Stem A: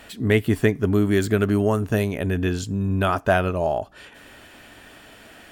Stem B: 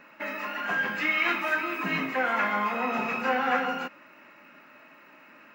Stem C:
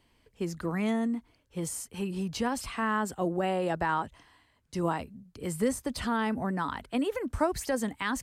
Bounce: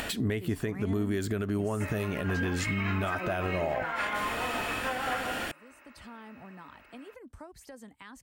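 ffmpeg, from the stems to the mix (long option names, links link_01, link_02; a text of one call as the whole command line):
ffmpeg -i stem1.wav -i stem2.wav -i stem3.wav -filter_complex "[0:a]volume=-1dB,asplit=2[link_01][link_02];[1:a]highpass=320,adelay=1600,volume=-4.5dB[link_03];[2:a]volume=-6dB[link_04];[link_02]apad=whole_len=362639[link_05];[link_04][link_05]sidechaingate=range=-40dB:threshold=-36dB:ratio=16:detection=peak[link_06];[link_01][link_06]amix=inputs=2:normalize=0,acompressor=mode=upward:threshold=-24dB:ratio=2.5,alimiter=limit=-17dB:level=0:latency=1:release=139,volume=0dB[link_07];[link_03][link_07]amix=inputs=2:normalize=0,alimiter=limit=-21dB:level=0:latency=1:release=213" out.wav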